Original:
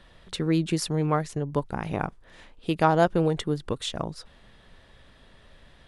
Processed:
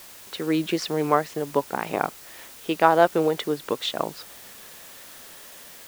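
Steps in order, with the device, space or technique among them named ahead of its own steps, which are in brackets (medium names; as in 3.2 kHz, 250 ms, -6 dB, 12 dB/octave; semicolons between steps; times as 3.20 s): dictaphone (band-pass 340–4100 Hz; level rider gain up to 6.5 dB; wow and flutter; white noise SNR 19 dB)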